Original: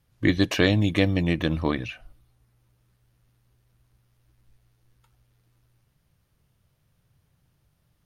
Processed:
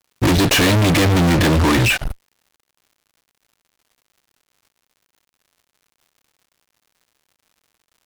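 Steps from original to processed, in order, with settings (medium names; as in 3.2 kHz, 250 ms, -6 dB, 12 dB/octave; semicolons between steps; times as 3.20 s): fuzz box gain 46 dB, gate -48 dBFS; crackle 170 per s -46 dBFS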